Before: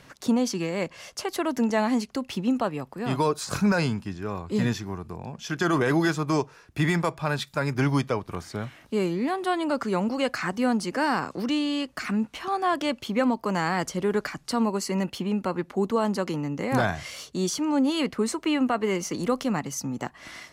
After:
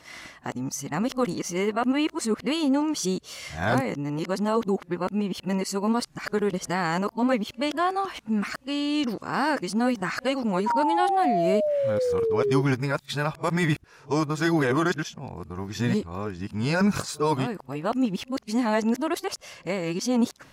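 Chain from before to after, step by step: whole clip reversed; painted sound fall, 10.66–12.62, 380–970 Hz -24 dBFS

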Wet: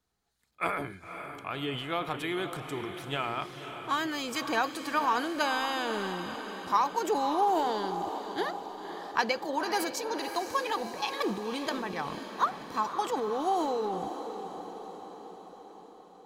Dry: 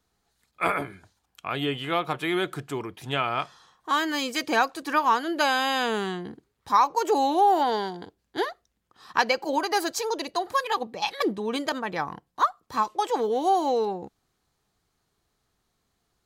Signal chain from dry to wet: transient shaper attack +3 dB, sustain +8 dB; on a send: diffused feedback echo 0.535 s, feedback 60%, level -9 dB; on the sum: gain -7.5 dB

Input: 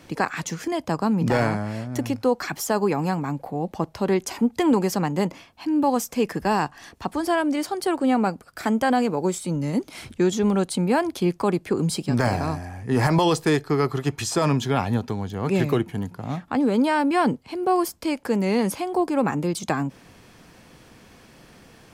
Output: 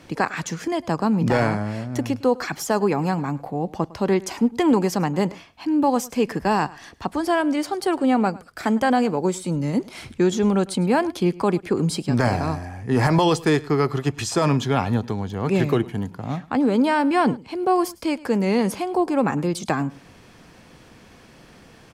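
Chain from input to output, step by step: high shelf 11000 Hz -8.5 dB; echo 0.105 s -21 dB; gain +1.5 dB

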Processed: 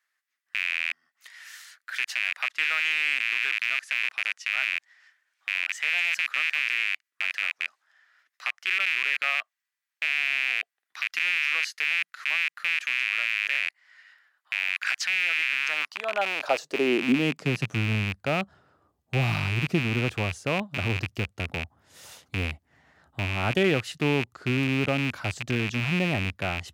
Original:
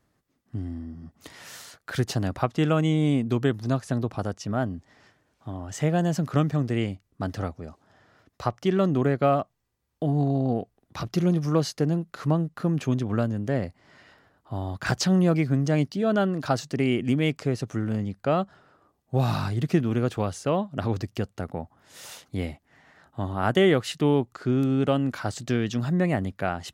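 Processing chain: rattling part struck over -34 dBFS, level -13 dBFS; high-pass sweep 1800 Hz -> 70 Hz, 15.5–18.19; gain -4.5 dB

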